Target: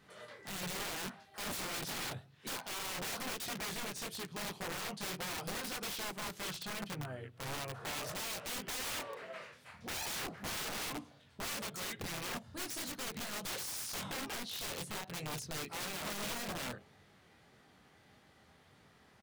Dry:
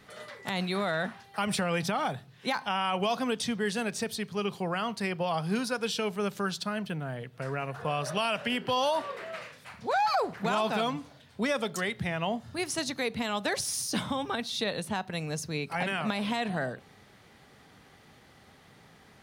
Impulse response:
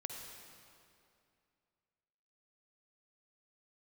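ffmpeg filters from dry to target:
-filter_complex "[0:a]flanger=delay=20:depth=5:speed=1.7,aeval=exprs='(mod(33.5*val(0)+1,2)-1)/33.5':c=same,asplit=2[s0][s1];[s1]asetrate=35002,aresample=44100,atempo=1.25992,volume=0.398[s2];[s0][s2]amix=inputs=2:normalize=0,volume=0.562"

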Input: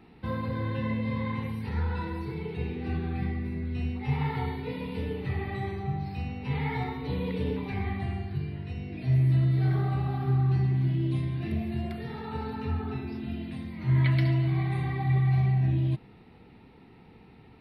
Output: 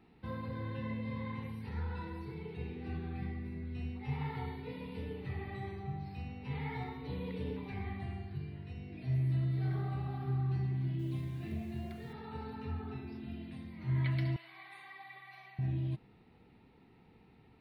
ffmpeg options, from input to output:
-filter_complex "[0:a]asettb=1/sr,asplit=3[s0][s1][s2];[s0]atrim=end=10.994[s3];[s1]atrim=start=10.99:end=12.13,asetpts=PTS-STARTPTS,afade=t=in:d=0.004:c=qsin,afade=t=out:st=1.136:d=0.004:c=qsin,acrusher=bits=8:mix=0:aa=0.5[s4];[s2]atrim=start=12.126[s5];[s3][s4]acrossfade=d=0.004:c1=hsin:c2=qsin[s6];[s6][s5]acrossfade=d=0.004:c1=qsin:c2=hsin,asettb=1/sr,asplit=3[s7][s8][s9];[s7]atrim=end=14.364[s10];[s8]atrim=start=14.36:end=15.59,asetpts=PTS-STARTPTS,afade=t=in:d=0.004:c=qsin,afade=t=out:st=1.226:d=0.004:c=qsin,highpass=1100[s11];[s9]atrim=start=15.586[s12];[s10][s11]acrossfade=d=0.004:c1=hsin:c2=qsin[s13];[s13][s12]acrossfade=d=0.004:c1=qsin:c2=hsin,volume=0.355"

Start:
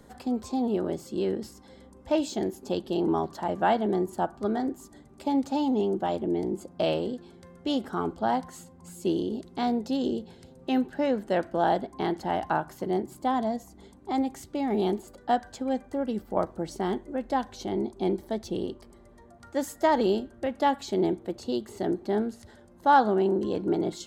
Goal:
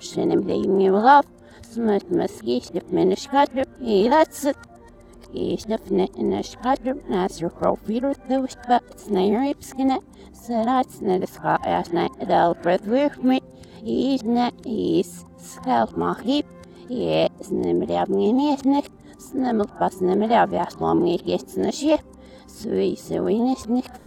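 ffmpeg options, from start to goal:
-af "areverse,volume=2.11"

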